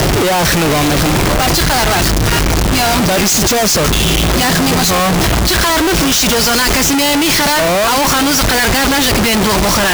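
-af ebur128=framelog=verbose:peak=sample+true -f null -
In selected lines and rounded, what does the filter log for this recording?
Integrated loudness:
  I:         -11.1 LUFS
  Threshold: -21.1 LUFS
Loudness range:
  LRA:         1.0 LU
  Threshold: -31.0 LUFS
  LRA low:   -11.5 LUFS
  LRA high:  -10.5 LUFS
Sample peak:
  Peak:       -8.6 dBFS
True peak:
  Peak:       -5.9 dBFS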